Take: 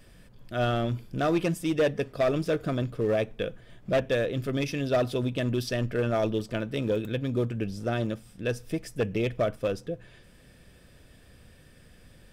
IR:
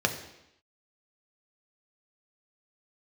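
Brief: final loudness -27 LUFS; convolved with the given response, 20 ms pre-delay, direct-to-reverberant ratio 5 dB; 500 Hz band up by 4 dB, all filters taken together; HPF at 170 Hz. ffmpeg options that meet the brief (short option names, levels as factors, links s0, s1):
-filter_complex "[0:a]highpass=170,equalizer=f=500:t=o:g=5,asplit=2[s0][s1];[1:a]atrim=start_sample=2205,adelay=20[s2];[s1][s2]afir=irnorm=-1:irlink=0,volume=0.158[s3];[s0][s3]amix=inputs=2:normalize=0,volume=0.794"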